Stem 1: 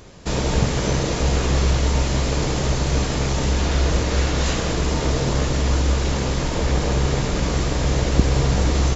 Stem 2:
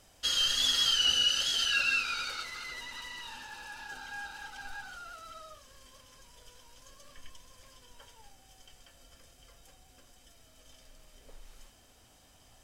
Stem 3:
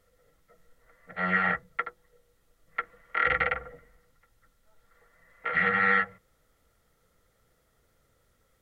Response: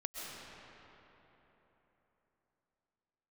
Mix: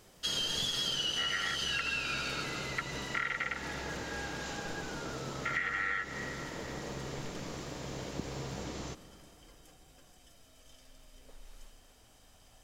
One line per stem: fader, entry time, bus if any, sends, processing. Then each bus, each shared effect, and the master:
−18.5 dB, 0.00 s, send −13.5 dB, high-pass filter 140 Hz 12 dB per octave
−5.0 dB, 0.00 s, send −3 dB, no processing
−4.5 dB, 0.00 s, send −13.5 dB, high-pass filter 1,200 Hz 6 dB per octave; high-shelf EQ 2,600 Hz +10.5 dB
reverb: on, RT60 3.8 s, pre-delay 90 ms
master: downward compressor 10 to 1, threshold −30 dBFS, peak gain reduction 9.5 dB

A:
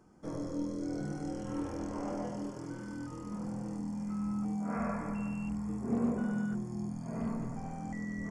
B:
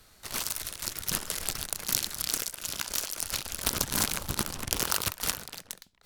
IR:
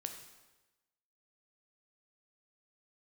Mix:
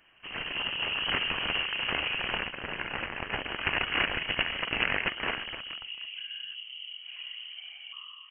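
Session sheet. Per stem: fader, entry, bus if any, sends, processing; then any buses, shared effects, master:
0:02.18 −5 dB → 0:02.62 −15 dB, 0.00 s, no send, brickwall limiter −29.5 dBFS, peak gain reduction 7.5 dB; random phases in short frames
−1.0 dB, 0.00 s, no send, phase distortion by the signal itself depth 0.91 ms; high-pass filter 270 Hz; gain into a clipping stage and back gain 21 dB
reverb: not used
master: automatic gain control gain up to 10 dB; voice inversion scrambler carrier 3,100 Hz

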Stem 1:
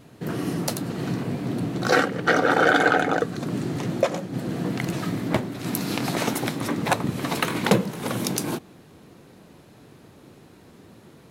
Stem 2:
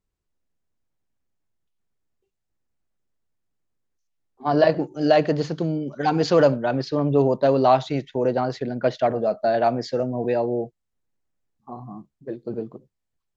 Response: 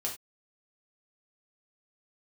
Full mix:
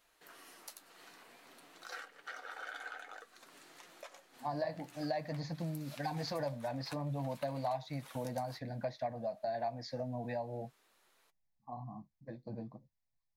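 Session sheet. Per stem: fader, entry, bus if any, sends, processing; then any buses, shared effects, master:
−9.5 dB, 0.00 s, no send, high-pass filter 1,000 Hz 12 dB per octave; high-shelf EQ 9,800 Hz +5 dB; downward compressor 1.5 to 1, threshold −47 dBFS, peak gain reduction 11 dB
−2.0 dB, 0.00 s, no send, phaser with its sweep stopped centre 2,000 Hz, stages 8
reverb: not used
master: flanger 0.52 Hz, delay 5.6 ms, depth 5.1 ms, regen −48%; downward compressor 3 to 1, threshold −37 dBFS, peak gain reduction 12.5 dB

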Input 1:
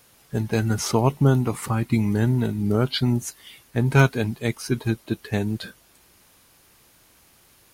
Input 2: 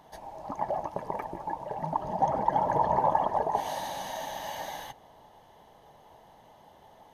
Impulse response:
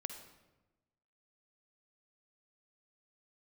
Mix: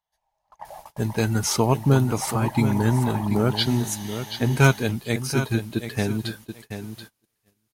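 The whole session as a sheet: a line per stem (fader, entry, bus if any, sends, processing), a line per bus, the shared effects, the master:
−0.5 dB, 0.65 s, no send, echo send −9.5 dB, high-shelf EQ 3,200 Hz +5 dB
+3.0 dB, 0.00 s, no send, no echo send, guitar amp tone stack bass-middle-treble 10-0-10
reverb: not used
echo: repeating echo 731 ms, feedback 19%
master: noise gate −42 dBFS, range −25 dB

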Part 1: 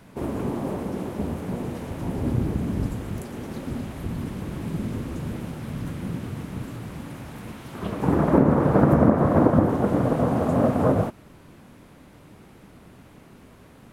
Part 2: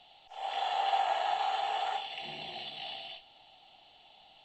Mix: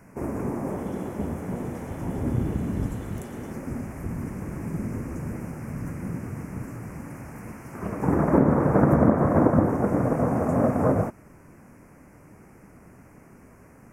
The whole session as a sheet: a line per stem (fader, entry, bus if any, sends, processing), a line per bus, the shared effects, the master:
−0.5 dB, 0.00 s, no send, Chebyshev band-stop filter 2,200–5,800 Hz, order 2
−19.0 dB, 0.35 s, no send, downward compressor, threshold −33 dBFS, peak gain reduction 8.5 dB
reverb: not used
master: no processing

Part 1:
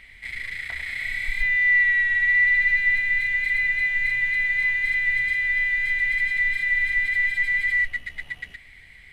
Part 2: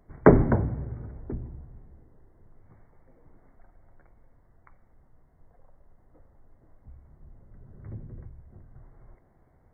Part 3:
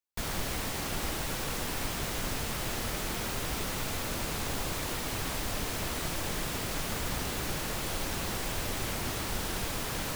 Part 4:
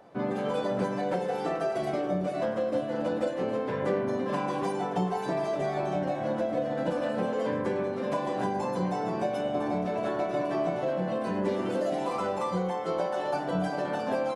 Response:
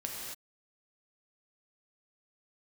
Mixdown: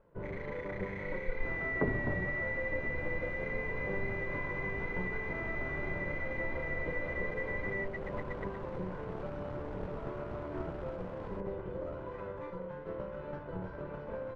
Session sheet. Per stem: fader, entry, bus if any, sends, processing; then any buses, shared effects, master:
−1.0 dB, 0.00 s, bus A, no send, no processing
−7.5 dB, 1.55 s, bus A, no send, no processing
−3.0 dB, 1.25 s, bus A, no send, no processing
−3.5 dB, 0.00 s, no bus, no send, lower of the sound and its delayed copy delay 2 ms; parametric band 770 Hz −9 dB 1.9 octaves
bus A: 0.0 dB, dead-zone distortion −38.5 dBFS; downward compressor 2 to 1, threshold −30 dBFS, peak gain reduction 9 dB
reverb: not used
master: low-pass filter 1,100 Hz 12 dB per octave

